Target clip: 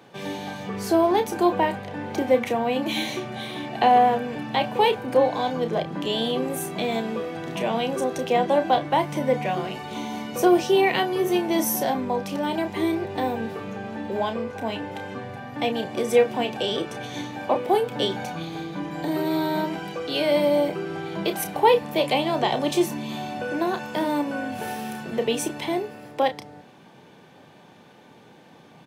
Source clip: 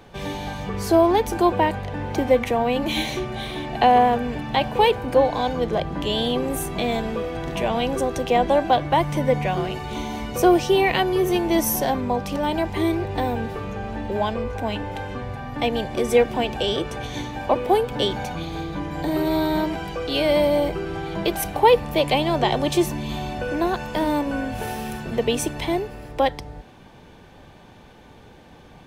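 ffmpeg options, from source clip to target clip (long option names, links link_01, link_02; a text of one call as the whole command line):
ffmpeg -i in.wav -filter_complex "[0:a]highpass=frequency=130:width=0.5412,highpass=frequency=130:width=1.3066,asplit=2[link_01][link_02];[link_02]adelay=31,volume=-9dB[link_03];[link_01][link_03]amix=inputs=2:normalize=0,volume=-2.5dB" out.wav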